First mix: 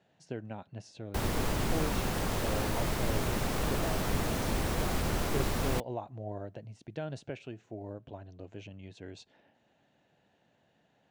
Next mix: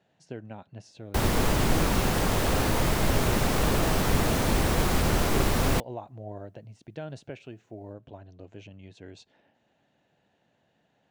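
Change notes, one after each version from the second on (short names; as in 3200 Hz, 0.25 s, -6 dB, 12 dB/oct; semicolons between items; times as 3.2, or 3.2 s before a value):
background +7.0 dB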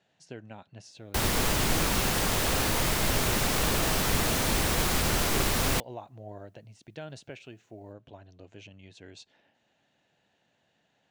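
master: add tilt shelf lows -4.5 dB, about 1500 Hz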